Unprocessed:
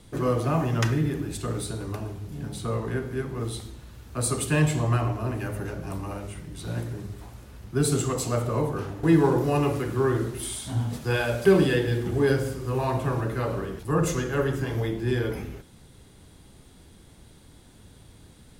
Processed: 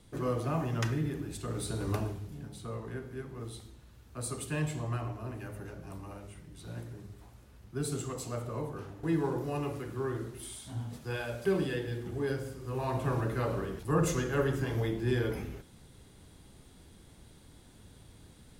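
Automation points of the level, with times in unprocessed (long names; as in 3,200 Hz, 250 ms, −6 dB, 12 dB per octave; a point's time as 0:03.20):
0:01.47 −7.5 dB
0:01.96 +1.5 dB
0:02.49 −11 dB
0:12.54 −11 dB
0:13.13 −4 dB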